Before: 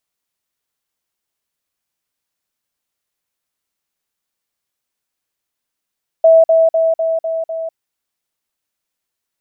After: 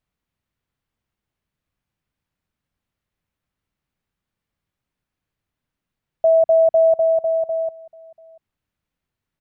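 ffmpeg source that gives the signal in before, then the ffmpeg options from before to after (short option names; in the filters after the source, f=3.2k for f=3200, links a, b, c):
-f lavfi -i "aevalsrc='pow(10,(-4.5-3*floor(t/0.25))/20)*sin(2*PI*652*t)*clip(min(mod(t,0.25),0.2-mod(t,0.25))/0.005,0,1)':d=1.5:s=44100"
-af "bass=f=250:g=15,treble=f=4k:g=-13,alimiter=limit=-10dB:level=0:latency=1:release=60,aecho=1:1:689:0.0668"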